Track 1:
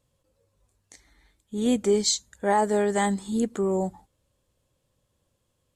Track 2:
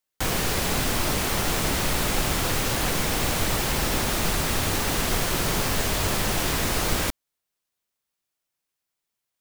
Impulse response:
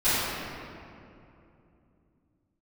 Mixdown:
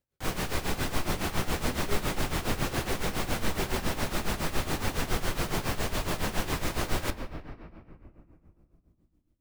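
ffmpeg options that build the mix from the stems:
-filter_complex "[0:a]acrusher=samples=39:mix=1:aa=0.000001:lfo=1:lforange=39:lforate=0.45,volume=-13dB[a];[1:a]highshelf=f=3.8k:g=-6,volume=-3.5dB,asplit=2[b][c];[c]volume=-22dB[d];[2:a]atrim=start_sample=2205[e];[d][e]afir=irnorm=-1:irlink=0[f];[a][b][f]amix=inputs=3:normalize=0,tremolo=f=7.2:d=0.77"

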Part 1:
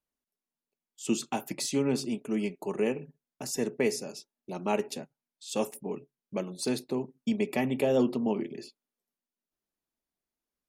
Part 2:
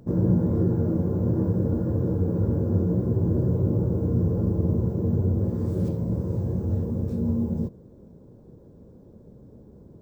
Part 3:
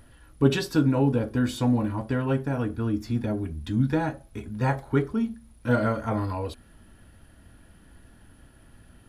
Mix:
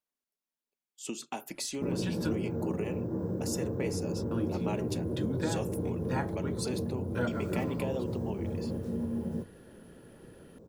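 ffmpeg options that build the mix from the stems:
-filter_complex "[0:a]acompressor=threshold=-29dB:ratio=6,volume=-2dB,asplit=2[a][b];[1:a]bandreject=f=50:t=h:w=6,bandreject=f=100:t=h:w=6,alimiter=limit=-20.5dB:level=0:latency=1:release=334,adelay=1750,volume=0.5dB[c];[2:a]acompressor=threshold=-24dB:ratio=6,adelay=1500,volume=-1.5dB,asplit=3[d][e][f];[d]atrim=end=2.42,asetpts=PTS-STARTPTS,afade=t=out:st=2.416:d=0.004:c=hsin[g];[e]atrim=start=2.42:end=4.31,asetpts=PTS-STARTPTS,volume=0[h];[f]atrim=start=4.31,asetpts=PTS-STARTPTS,afade=t=in:d=0.004:c=hsin[i];[g][h][i]concat=n=3:v=0:a=1[j];[b]apad=whole_len=471142[k];[j][k]sidechaincompress=threshold=-42dB:ratio=8:attack=20:release=176[l];[a][c][l]amix=inputs=3:normalize=0,lowshelf=f=160:g=-12"

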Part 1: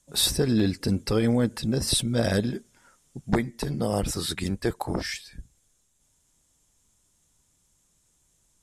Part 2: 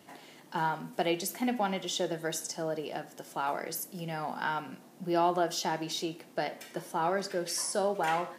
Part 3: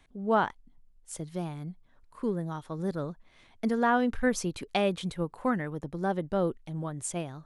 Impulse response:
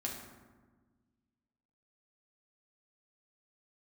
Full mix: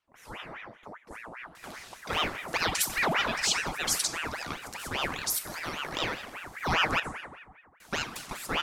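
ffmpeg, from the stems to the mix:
-filter_complex "[0:a]highshelf=f=4.2k:g=10,volume=-15dB,asplit=2[a][b];[b]volume=-22.5dB[c];[1:a]equalizer=f=6.9k:w=0.33:g=11,adelay=1550,volume=-2dB,asplit=3[d][e][f];[d]atrim=end=7,asetpts=PTS-STARTPTS,afade=t=out:st=6.996:d=0.004:c=hsin[g];[e]atrim=start=7:end=7.8,asetpts=PTS-STARTPTS,volume=0[h];[f]atrim=start=7.8,asetpts=PTS-STARTPTS,afade=t=in:d=0.004:c=hsin[i];[g][h][i]concat=n=3:v=0:a=1,asplit=2[j][k];[k]volume=-4.5dB[l];[2:a]highpass=550,volume=-10.5dB,asplit=2[m][n];[n]volume=-5dB[o];[a][m]amix=inputs=2:normalize=0,lowpass=f=1.7k:w=0.5412,lowpass=f=1.7k:w=1.3066,acompressor=threshold=-39dB:ratio=6,volume=0dB[p];[3:a]atrim=start_sample=2205[q];[c][l][o]amix=inputs=3:normalize=0[r];[r][q]afir=irnorm=-1:irlink=0[s];[j][p][s]amix=inputs=3:normalize=0,aeval=exprs='val(0)*sin(2*PI*1300*n/s+1300*0.7/5*sin(2*PI*5*n/s))':c=same"

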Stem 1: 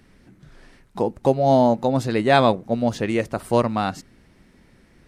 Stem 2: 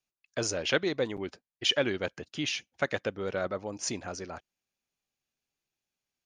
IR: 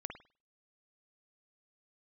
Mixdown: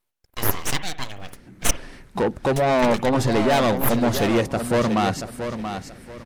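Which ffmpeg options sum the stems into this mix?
-filter_complex "[0:a]dynaudnorm=f=280:g=3:m=6.5dB,asoftclip=type=tanh:threshold=-19dB,adelay=1200,volume=3dB,asplit=2[a][b];[b]volume=-8.5dB[c];[1:a]equalizer=f=6.4k:t=o:w=2.1:g=14.5,aeval=exprs='abs(val(0))':c=same,volume=-2.5dB,asplit=3[d][e][f];[d]atrim=end=1.71,asetpts=PTS-STARTPTS,afade=t=out:st=1.706:d=0.004:c=hsin[g];[e]atrim=start=1.71:end=2.56,asetpts=PTS-STARTPTS,volume=0[h];[f]atrim=start=2.56,asetpts=PTS-STARTPTS,afade=t=in:d=0.004:c=hsin[i];[g][h][i]concat=n=3:v=0:a=1,asplit=2[j][k];[k]volume=-3.5dB[l];[2:a]atrim=start_sample=2205[m];[l][m]afir=irnorm=-1:irlink=0[n];[c]aecho=0:1:681|1362|2043|2724:1|0.27|0.0729|0.0197[o];[a][j][n][o]amix=inputs=4:normalize=0"

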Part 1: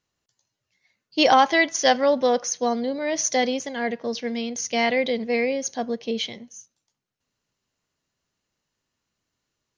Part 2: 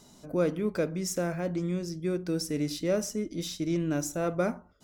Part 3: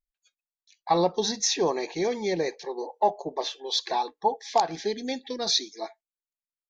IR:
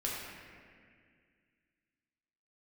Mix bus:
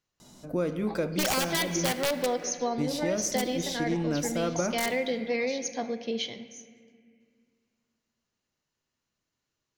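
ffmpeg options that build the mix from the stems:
-filter_complex "[0:a]aeval=exprs='(mod(3.55*val(0)+1,2)-1)/3.55':c=same,volume=-6dB,asplit=2[a][b];[b]volume=-12.5dB[c];[1:a]bandreject=f=410:w=12,adelay=200,volume=1dB,asplit=3[d][e][f];[d]atrim=end=1.92,asetpts=PTS-STARTPTS,afade=t=out:st=1.916:d=0.004:c=hsin[g];[e]atrim=start=1.92:end=2.78,asetpts=PTS-STARTPTS,volume=0[h];[f]atrim=start=2.78,asetpts=PTS-STARTPTS,afade=t=in:d=0.004:c=hsin[i];[g][h][i]concat=n=3:v=0:a=1,asplit=2[j][k];[k]volume=-14.5dB[l];[2:a]acompressor=threshold=-32dB:ratio=6,volume=-7.5dB[m];[3:a]atrim=start_sample=2205[n];[c][l]amix=inputs=2:normalize=0[o];[o][n]afir=irnorm=-1:irlink=0[p];[a][j][m][p]amix=inputs=4:normalize=0,acompressor=threshold=-24dB:ratio=6"

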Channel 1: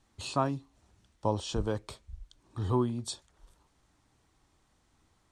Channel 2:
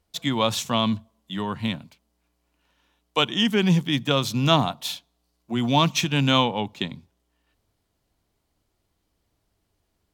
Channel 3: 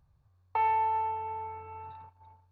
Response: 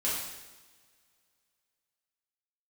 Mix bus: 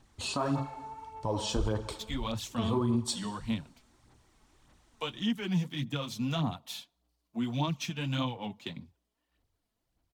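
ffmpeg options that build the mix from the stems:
-filter_complex "[0:a]volume=1.5dB,asplit=2[a][b];[b]volume=-15.5dB[c];[1:a]bandreject=f=400:w=12,acrossover=split=220[d][e];[e]acompressor=threshold=-30dB:ratio=2[f];[d][f]amix=inputs=2:normalize=0,flanger=delay=2.3:depth=6.6:regen=-49:speed=1.7:shape=sinusoidal,adelay=1850,volume=-5.5dB[g];[2:a]acompressor=threshold=-33dB:ratio=6,volume=-11.5dB[h];[3:a]atrim=start_sample=2205[i];[c][i]afir=irnorm=-1:irlink=0[j];[a][g][h][j]amix=inputs=4:normalize=0,aphaser=in_gain=1:out_gain=1:delay=4.7:decay=0.48:speed=1.7:type=sinusoidal,alimiter=limit=-20dB:level=0:latency=1:release=111"

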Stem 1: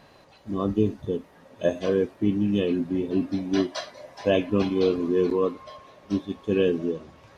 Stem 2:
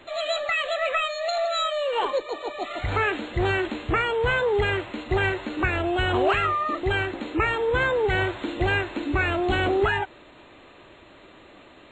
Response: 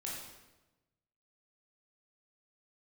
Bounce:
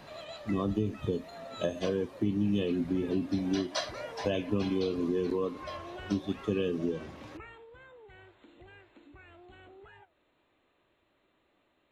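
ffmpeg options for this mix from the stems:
-filter_complex "[0:a]acompressor=threshold=-25dB:ratio=3,volume=2dB,asplit=2[a][b];[1:a]acompressor=threshold=-32dB:ratio=2.5,flanger=delay=8.8:depth=8.8:regen=90:speed=1.8:shape=triangular,volume=-8dB,afade=t=out:st=7.17:d=0.5:silence=0.298538[c];[b]apad=whole_len=525351[d];[c][d]sidechaincompress=threshold=-28dB:ratio=8:attack=16:release=755[e];[a][e]amix=inputs=2:normalize=0,acrossover=split=160|3000[f][g][h];[g]acompressor=threshold=-30dB:ratio=2.5[i];[f][i][h]amix=inputs=3:normalize=0"

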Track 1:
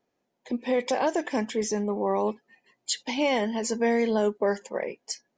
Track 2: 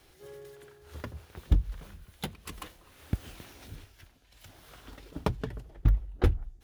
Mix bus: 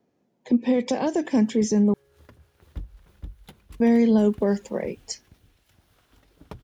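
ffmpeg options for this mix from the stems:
-filter_complex "[0:a]acrossover=split=260|3000[a][b][c];[b]acompressor=threshold=-41dB:ratio=1.5[d];[a][d][c]amix=inputs=3:normalize=0,equalizer=f=160:w=0.38:g=12.5,volume=0.5dB,asplit=3[e][f][g];[e]atrim=end=1.94,asetpts=PTS-STARTPTS,afade=t=out:st=1.936:d=0.004:c=hsin[h];[f]atrim=start=1.94:end=3.8,asetpts=PTS-STARTPTS,volume=0[i];[g]atrim=start=3.8,asetpts=PTS-STARTPTS,afade=t=in:d=0.004:c=hsin[j];[h][i][j]concat=n=3:v=0:a=1[k];[1:a]adelay=1250,volume=-11.5dB,asplit=2[l][m];[m]volume=-3.5dB,aecho=0:1:468|936|1404|1872|2340:1|0.37|0.137|0.0507|0.0187[n];[k][l][n]amix=inputs=3:normalize=0"

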